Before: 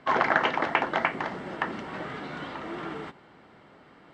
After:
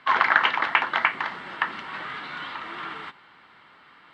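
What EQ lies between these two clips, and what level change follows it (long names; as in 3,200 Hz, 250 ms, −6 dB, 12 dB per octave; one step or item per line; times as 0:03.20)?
flat-topped bell 2,000 Hz +13.5 dB 2.6 octaves
high-shelf EQ 6,600 Hz +11 dB
−8.5 dB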